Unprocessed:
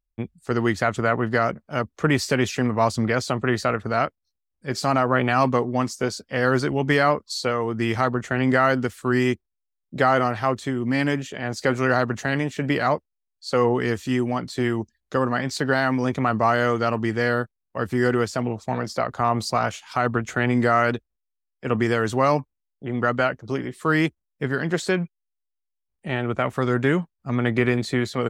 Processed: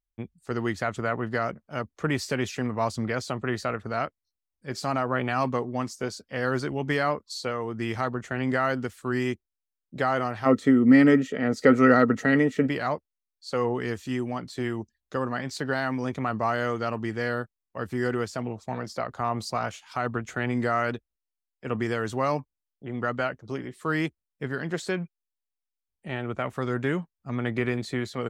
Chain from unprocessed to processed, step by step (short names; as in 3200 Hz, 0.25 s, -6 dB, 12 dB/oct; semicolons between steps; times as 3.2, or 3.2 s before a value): 10.45–12.66 small resonant body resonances 260/450/1300/1900 Hz, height 16 dB -> 13 dB, ringing for 30 ms; gain -6.5 dB